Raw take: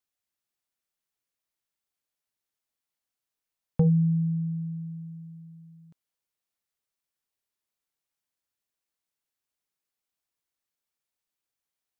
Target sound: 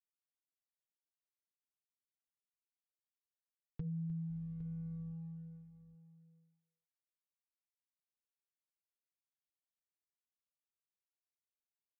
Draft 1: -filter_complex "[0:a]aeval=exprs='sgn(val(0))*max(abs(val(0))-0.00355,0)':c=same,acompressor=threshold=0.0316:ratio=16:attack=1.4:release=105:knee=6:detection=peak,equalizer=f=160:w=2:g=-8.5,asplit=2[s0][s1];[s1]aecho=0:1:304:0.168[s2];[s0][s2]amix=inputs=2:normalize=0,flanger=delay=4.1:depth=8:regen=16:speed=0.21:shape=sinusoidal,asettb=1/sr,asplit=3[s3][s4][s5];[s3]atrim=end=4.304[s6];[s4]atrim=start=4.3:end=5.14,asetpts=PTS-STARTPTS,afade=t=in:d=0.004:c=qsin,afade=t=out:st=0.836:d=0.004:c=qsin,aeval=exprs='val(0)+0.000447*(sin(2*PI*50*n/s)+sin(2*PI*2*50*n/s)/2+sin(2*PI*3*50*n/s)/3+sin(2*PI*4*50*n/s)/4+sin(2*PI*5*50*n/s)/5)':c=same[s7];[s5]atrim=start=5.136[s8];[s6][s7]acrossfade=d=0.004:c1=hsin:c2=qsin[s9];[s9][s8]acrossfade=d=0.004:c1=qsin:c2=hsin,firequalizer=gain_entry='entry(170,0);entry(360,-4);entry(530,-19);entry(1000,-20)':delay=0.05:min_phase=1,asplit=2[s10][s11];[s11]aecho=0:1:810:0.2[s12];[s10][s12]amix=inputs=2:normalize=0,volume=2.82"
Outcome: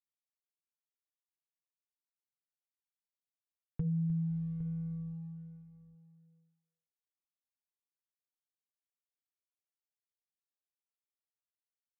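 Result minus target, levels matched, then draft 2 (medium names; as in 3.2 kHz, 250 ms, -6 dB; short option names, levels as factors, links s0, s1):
compression: peak gain reduction -7.5 dB
-filter_complex "[0:a]aeval=exprs='sgn(val(0))*max(abs(val(0))-0.00355,0)':c=same,acompressor=threshold=0.0126:ratio=16:attack=1.4:release=105:knee=6:detection=peak,equalizer=f=160:w=2:g=-8.5,asplit=2[s0][s1];[s1]aecho=0:1:304:0.168[s2];[s0][s2]amix=inputs=2:normalize=0,flanger=delay=4.1:depth=8:regen=16:speed=0.21:shape=sinusoidal,asettb=1/sr,asplit=3[s3][s4][s5];[s3]atrim=end=4.304[s6];[s4]atrim=start=4.3:end=5.14,asetpts=PTS-STARTPTS,afade=t=in:d=0.004:c=qsin,afade=t=out:st=0.836:d=0.004:c=qsin,aeval=exprs='val(0)+0.000447*(sin(2*PI*50*n/s)+sin(2*PI*2*50*n/s)/2+sin(2*PI*3*50*n/s)/3+sin(2*PI*4*50*n/s)/4+sin(2*PI*5*50*n/s)/5)':c=same[s7];[s5]atrim=start=5.136[s8];[s6][s7]acrossfade=d=0.004:c1=hsin:c2=qsin[s9];[s9][s8]acrossfade=d=0.004:c1=qsin:c2=hsin,firequalizer=gain_entry='entry(170,0);entry(360,-4);entry(530,-19);entry(1000,-20)':delay=0.05:min_phase=1,asplit=2[s10][s11];[s11]aecho=0:1:810:0.2[s12];[s10][s12]amix=inputs=2:normalize=0,volume=2.82"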